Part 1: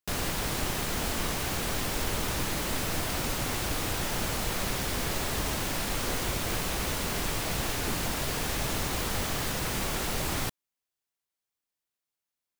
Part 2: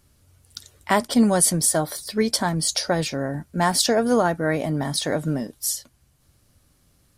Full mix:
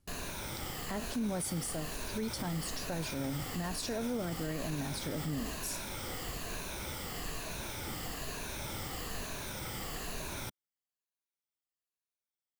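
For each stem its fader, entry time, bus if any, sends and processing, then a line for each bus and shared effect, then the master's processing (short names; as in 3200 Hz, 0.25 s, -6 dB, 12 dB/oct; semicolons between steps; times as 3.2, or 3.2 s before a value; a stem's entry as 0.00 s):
-10.5 dB, 0.00 s, no send, moving spectral ripple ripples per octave 1.5, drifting -1.1 Hz, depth 9 dB
-2.5 dB, 0.00 s, no send, low shelf 320 Hz +7.5 dB; rotary speaker horn 1.2 Hz; resonator 270 Hz, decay 0.55 s, harmonics odd, mix 70%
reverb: off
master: limiter -27.5 dBFS, peak gain reduction 11 dB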